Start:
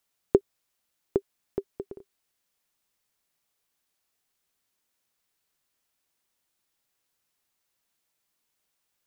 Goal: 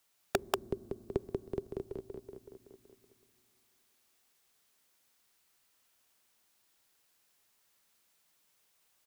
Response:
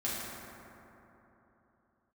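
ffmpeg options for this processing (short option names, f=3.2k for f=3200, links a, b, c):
-filter_complex "[0:a]lowshelf=f=370:g=-3.5,aecho=1:1:188|376|564|752|940|1128|1316:0.631|0.347|0.191|0.105|0.0577|0.0318|0.0175,acrossover=split=190|3000[a][b][c];[b]acompressor=threshold=-58dB:ratio=1.5[d];[a][d][c]amix=inputs=3:normalize=0,asplit=2[e][f];[1:a]atrim=start_sample=2205[g];[f][g]afir=irnorm=-1:irlink=0,volume=-25dB[h];[e][h]amix=inputs=2:normalize=0,aeval=exprs='(mod(8.91*val(0)+1,2)-1)/8.91':c=same,volume=4dB"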